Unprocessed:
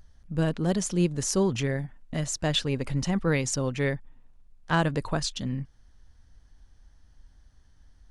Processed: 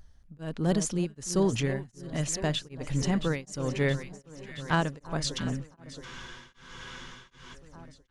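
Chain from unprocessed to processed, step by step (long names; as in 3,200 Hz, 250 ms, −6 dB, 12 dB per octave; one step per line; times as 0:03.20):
delay that swaps between a low-pass and a high-pass 336 ms, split 1,300 Hz, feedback 82%, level −11.5 dB
frozen spectrum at 0:06.07, 1.46 s
tremolo along a rectified sine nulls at 1.3 Hz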